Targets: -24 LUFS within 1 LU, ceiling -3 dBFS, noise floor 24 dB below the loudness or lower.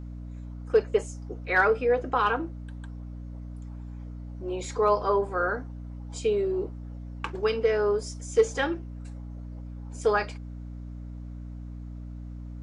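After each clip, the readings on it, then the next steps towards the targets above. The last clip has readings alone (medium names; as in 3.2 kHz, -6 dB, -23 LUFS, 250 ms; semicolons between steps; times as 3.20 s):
hum 60 Hz; highest harmonic 300 Hz; hum level -36 dBFS; loudness -27.0 LUFS; peak level -11.0 dBFS; loudness target -24.0 LUFS
-> de-hum 60 Hz, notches 5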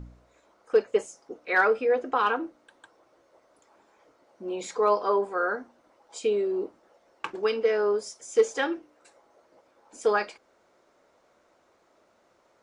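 hum not found; loudness -27.0 LUFS; peak level -11.5 dBFS; loudness target -24.0 LUFS
-> trim +3 dB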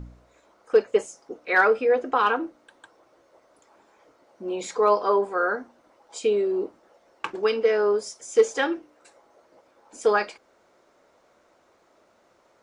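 loudness -24.0 LUFS; peak level -8.5 dBFS; noise floor -62 dBFS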